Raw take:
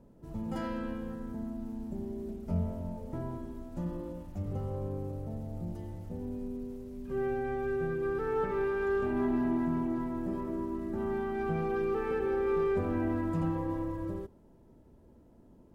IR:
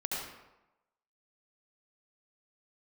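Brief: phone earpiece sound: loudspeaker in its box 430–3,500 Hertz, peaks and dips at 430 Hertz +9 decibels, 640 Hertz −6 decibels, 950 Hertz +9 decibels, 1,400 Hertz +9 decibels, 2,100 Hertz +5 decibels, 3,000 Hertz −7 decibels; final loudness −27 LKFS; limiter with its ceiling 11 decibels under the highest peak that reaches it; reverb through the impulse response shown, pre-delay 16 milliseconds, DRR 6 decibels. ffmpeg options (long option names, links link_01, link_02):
-filter_complex "[0:a]alimiter=level_in=7dB:limit=-24dB:level=0:latency=1,volume=-7dB,asplit=2[link_01][link_02];[1:a]atrim=start_sample=2205,adelay=16[link_03];[link_02][link_03]afir=irnorm=-1:irlink=0,volume=-10.5dB[link_04];[link_01][link_04]amix=inputs=2:normalize=0,highpass=430,equalizer=frequency=430:width_type=q:width=4:gain=9,equalizer=frequency=640:width_type=q:width=4:gain=-6,equalizer=frequency=950:width_type=q:width=4:gain=9,equalizer=frequency=1400:width_type=q:width=4:gain=9,equalizer=frequency=2100:width_type=q:width=4:gain=5,equalizer=frequency=3000:width_type=q:width=4:gain=-7,lowpass=frequency=3500:width=0.5412,lowpass=frequency=3500:width=1.3066,volume=11dB"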